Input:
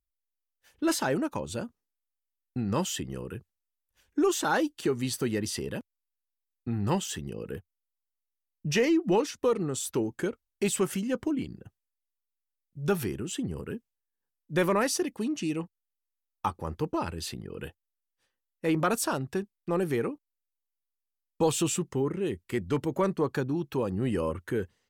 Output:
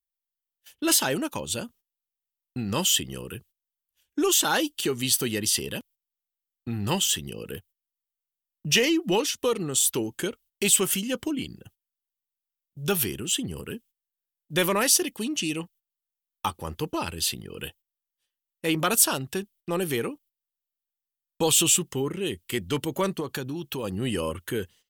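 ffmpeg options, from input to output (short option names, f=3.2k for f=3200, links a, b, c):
-filter_complex "[0:a]asettb=1/sr,asplit=3[a][b][c];[a]atrim=end=23.204[d];[b]atrim=start=23.2:end=23.84,asetpts=PTS-STARTPTS,afade=t=in:d=0.004:c=qsin,afade=t=out:st=0.636:d=0.004:c=qsin,acompressor=threshold=-30dB:ratio=2.5:attack=3.2:release=140:knee=1:detection=peak[e];[c]atrim=start=23.836[f];[d][e]acrossfade=d=0.004:c1=hsin:c2=qsin[g];[g][f]acrossfade=d=0.004:c1=qsin:c2=hsin,aemphasis=mode=production:type=75kf,agate=range=-14dB:threshold=-53dB:ratio=16:detection=peak,equalizer=f=3.1k:w=2.4:g=9.5"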